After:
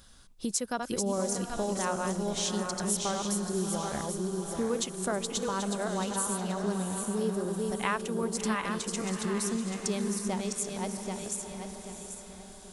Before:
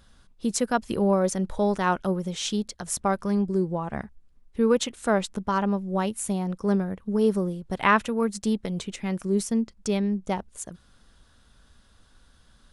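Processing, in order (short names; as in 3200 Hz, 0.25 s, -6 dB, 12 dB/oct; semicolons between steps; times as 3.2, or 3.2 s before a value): regenerating reverse delay 0.392 s, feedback 52%, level -4.5 dB; tone controls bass -2 dB, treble +9 dB; compressor 2.5:1, threshold -32 dBFS, peak gain reduction 12 dB; diffused feedback echo 0.702 s, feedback 44%, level -8.5 dB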